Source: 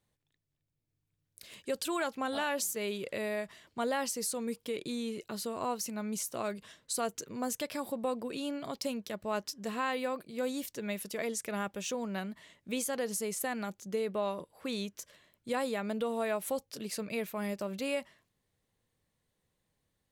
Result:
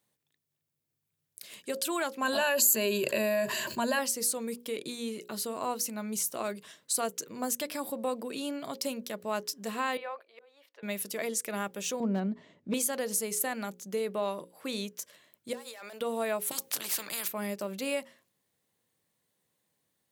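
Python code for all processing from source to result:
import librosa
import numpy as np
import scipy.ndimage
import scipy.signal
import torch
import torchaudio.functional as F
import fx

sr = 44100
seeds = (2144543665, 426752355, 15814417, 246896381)

y = fx.chain(x, sr, fx.ripple_eq(per_octave=1.4, db=13),
    fx.env_flatten(amount_pct=70), at=(2.22, 3.99))
y = fx.chain(y, sr, fx.highpass(hz=600.0, slope=24),
    fx.auto_swell(attack_ms=640.0),
    fx.air_absorb(metres=370.0), at=(9.97, 10.83))
y = fx.chain(y, sr, fx.lowpass(hz=6300.0, slope=24),
    fx.tilt_shelf(db=10.0, hz=890.0),
    fx.clip_hard(threshold_db=-22.0), at=(12.0, 12.74))
y = fx.chain(y, sr, fx.highpass(hz=810.0, slope=12),
    fx.clip_hard(threshold_db=-36.0),
    fx.over_compress(threshold_db=-48.0, ratio=-1.0), at=(15.53, 16.01))
y = fx.chain(y, sr, fx.highpass(hz=140.0, slope=24),
    fx.spectral_comp(ratio=4.0), at=(16.51, 17.28))
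y = scipy.signal.sosfilt(scipy.signal.butter(2, 160.0, 'highpass', fs=sr, output='sos'), y)
y = fx.high_shelf(y, sr, hz=8700.0, db=9.0)
y = fx.hum_notches(y, sr, base_hz=60, count=9)
y = y * 10.0 ** (1.5 / 20.0)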